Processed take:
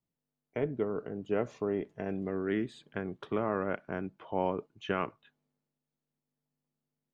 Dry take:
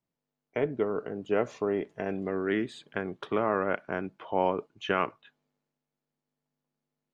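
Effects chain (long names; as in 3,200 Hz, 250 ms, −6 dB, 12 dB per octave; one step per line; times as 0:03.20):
low-shelf EQ 290 Hz +8.5 dB
level −6.5 dB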